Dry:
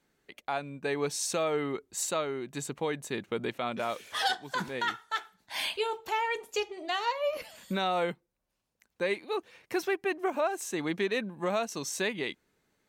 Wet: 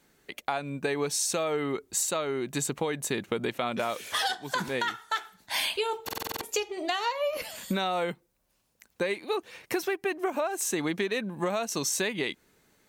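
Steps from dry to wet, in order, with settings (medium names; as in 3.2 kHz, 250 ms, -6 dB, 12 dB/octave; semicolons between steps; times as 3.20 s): treble shelf 6.9 kHz +6.5 dB; compression, threshold -34 dBFS, peak gain reduction 10.5 dB; buffer glitch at 6.04 s, samples 2048, times 7; trim +8 dB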